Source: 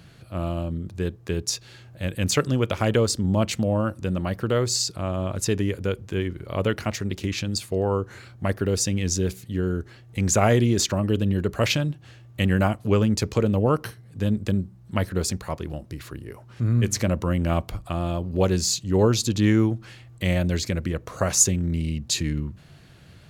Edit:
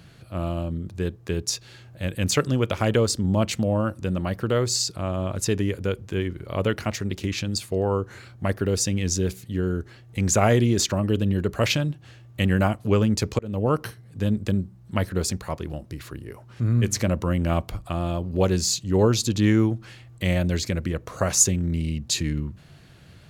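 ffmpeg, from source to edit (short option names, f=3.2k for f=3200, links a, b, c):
-filter_complex "[0:a]asplit=2[a][b];[a]atrim=end=13.39,asetpts=PTS-STARTPTS,afade=t=out:st=13.386:d=0.004:c=hsin[c];[b]atrim=start=13.39,asetpts=PTS-STARTPTS,afade=t=in:d=0.45:c=qsin[d];[c][d]concat=n=2:v=0:a=1"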